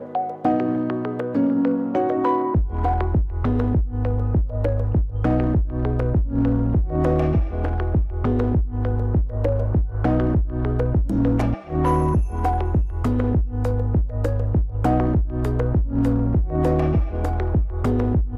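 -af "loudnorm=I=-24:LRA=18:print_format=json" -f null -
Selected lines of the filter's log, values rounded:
"input_i" : "-22.0",
"input_tp" : "-7.5",
"input_lra" : "0.6",
"input_thresh" : "-32.0",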